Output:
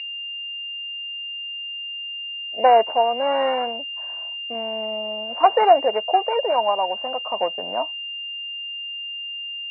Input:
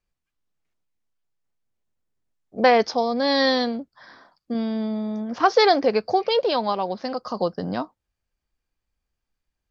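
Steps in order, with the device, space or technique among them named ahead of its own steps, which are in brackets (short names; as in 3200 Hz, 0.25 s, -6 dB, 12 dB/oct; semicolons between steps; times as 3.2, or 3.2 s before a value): toy sound module (decimation joined by straight lines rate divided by 4×; pulse-width modulation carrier 2800 Hz; speaker cabinet 530–4000 Hz, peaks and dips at 650 Hz +10 dB, 940 Hz +7 dB, 1300 Hz -4 dB, 2200 Hz +9 dB, 3200 Hz -10 dB)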